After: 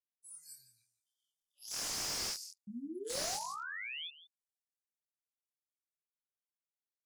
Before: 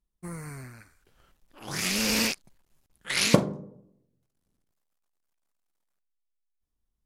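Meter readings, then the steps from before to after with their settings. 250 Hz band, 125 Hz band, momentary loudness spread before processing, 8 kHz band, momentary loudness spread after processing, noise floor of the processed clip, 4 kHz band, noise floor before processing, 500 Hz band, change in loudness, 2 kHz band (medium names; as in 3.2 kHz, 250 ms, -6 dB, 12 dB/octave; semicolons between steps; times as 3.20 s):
-18.0 dB, -25.5 dB, 19 LU, -7.0 dB, 17 LU, under -85 dBFS, -10.0 dB, -80 dBFS, -14.0 dB, -12.5 dB, -12.5 dB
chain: rattle on loud lows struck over -26 dBFS, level -14 dBFS; low-pass 9.2 kHz 12 dB/octave; spectral noise reduction 23 dB; FFT filter 160 Hz 0 dB, 280 Hz -24 dB, 1.5 kHz -14 dB, 2.5 kHz -20 dB, 5 kHz +7 dB; compression 1.5:1, threshold -49 dBFS, peak gain reduction 11 dB; differentiator; painted sound rise, 2.67–4.08 s, 200–3600 Hz -47 dBFS; doubling 25 ms -2 dB; delay 168 ms -15.5 dB; slew-rate limiter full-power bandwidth 68 Hz; trim +2 dB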